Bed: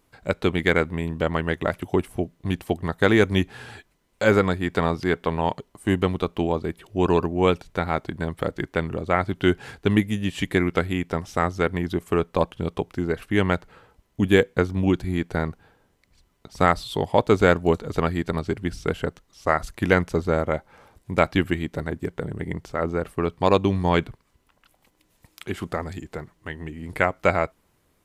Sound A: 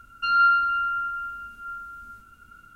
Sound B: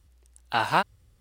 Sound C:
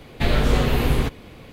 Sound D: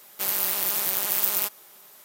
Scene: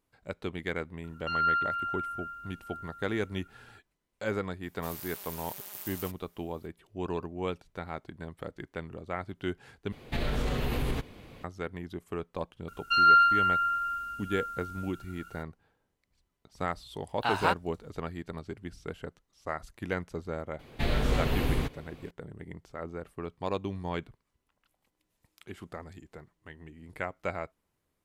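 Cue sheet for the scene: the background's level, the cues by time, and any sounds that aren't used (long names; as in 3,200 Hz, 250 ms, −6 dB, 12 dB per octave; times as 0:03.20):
bed −14 dB
0:01.04: mix in A −8.5 dB
0:04.63: mix in D −18 dB
0:09.92: overwrite with C −7 dB + brickwall limiter −14 dBFS
0:12.68: mix in A −3 dB + high-shelf EQ 2,200 Hz +8 dB
0:16.71: mix in B −4.5 dB
0:20.59: mix in C −8.5 dB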